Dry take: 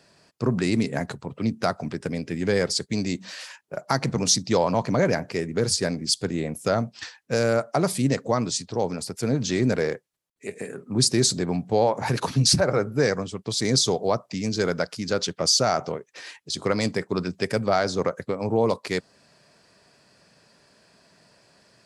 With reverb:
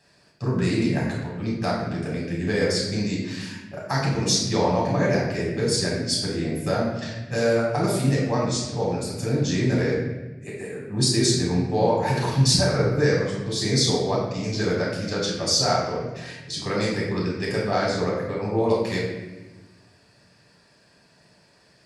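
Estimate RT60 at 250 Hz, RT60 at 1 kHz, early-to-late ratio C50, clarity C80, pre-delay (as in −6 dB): 1.8 s, 1.0 s, 1.5 dB, 4.5 dB, 7 ms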